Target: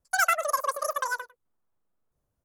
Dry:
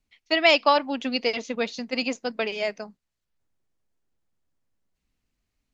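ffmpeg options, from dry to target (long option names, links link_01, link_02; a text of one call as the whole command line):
ffmpeg -i in.wav -filter_complex "[0:a]equalizer=frequency=500:width_type=o:width=1:gain=5,equalizer=frequency=1000:width_type=o:width=1:gain=-5,equalizer=frequency=2000:width_type=o:width=1:gain=-9,aecho=1:1:237:0.106,asetrate=103194,aresample=44100,acrossover=split=1700[link_01][link_02];[link_02]volume=22.5dB,asoftclip=hard,volume=-22.5dB[link_03];[link_01][link_03]amix=inputs=2:normalize=0,volume=-2dB" out.wav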